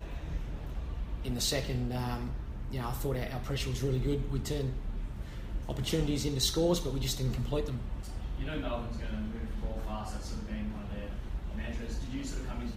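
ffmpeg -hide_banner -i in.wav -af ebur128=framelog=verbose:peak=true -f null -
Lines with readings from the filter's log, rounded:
Integrated loudness:
  I:         -35.1 LUFS
  Threshold: -45.1 LUFS
Loudness range:
  LRA:         6.5 LU
  Threshold: -54.7 LUFS
  LRA low:   -39.0 LUFS
  LRA high:  -32.5 LUFS
True peak:
  Peak:      -16.2 dBFS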